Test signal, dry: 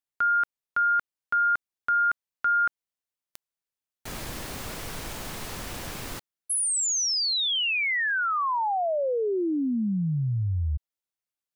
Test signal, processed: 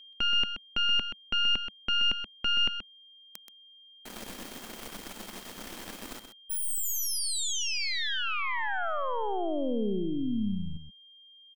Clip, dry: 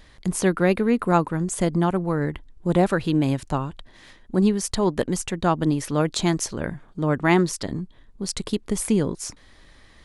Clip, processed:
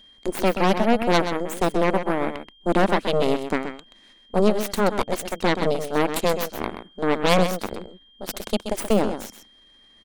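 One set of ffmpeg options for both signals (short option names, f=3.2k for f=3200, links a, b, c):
-filter_complex "[0:a]aeval=exprs='0.668*(cos(1*acos(clip(val(0)/0.668,-1,1)))-cos(1*PI/2))+0.168*(cos(3*acos(clip(val(0)/0.668,-1,1)))-cos(3*PI/2))+0.0531*(cos(7*acos(clip(val(0)/0.668,-1,1)))-cos(7*PI/2))+0.133*(cos(8*acos(clip(val(0)/0.668,-1,1)))-cos(8*PI/2))':c=same,aeval=exprs='val(0)+0.00316*sin(2*PI*3200*n/s)':c=same,lowshelf=f=170:t=q:w=3:g=-6,asplit=2[a][b];[b]aecho=0:1:128:0.355[c];[a][c]amix=inputs=2:normalize=0,volume=1dB"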